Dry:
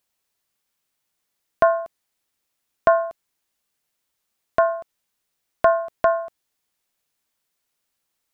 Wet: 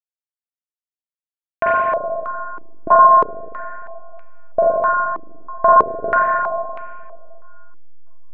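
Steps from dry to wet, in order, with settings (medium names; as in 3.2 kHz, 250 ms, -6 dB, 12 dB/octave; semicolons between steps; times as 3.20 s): hysteresis with a dead band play -41 dBFS; spring tank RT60 2.2 s, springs 38/43/59 ms, chirp 75 ms, DRR -7 dB; step-sequenced low-pass 3.1 Hz 330–2400 Hz; trim -5 dB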